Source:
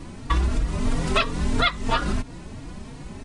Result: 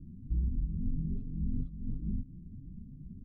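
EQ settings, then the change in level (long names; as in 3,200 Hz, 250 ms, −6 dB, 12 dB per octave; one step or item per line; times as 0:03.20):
inverse Chebyshev low-pass filter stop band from 690 Hz, stop band 60 dB
low-shelf EQ 72 Hz −10 dB
parametric band 110 Hz −5 dB 2 octaves
0.0 dB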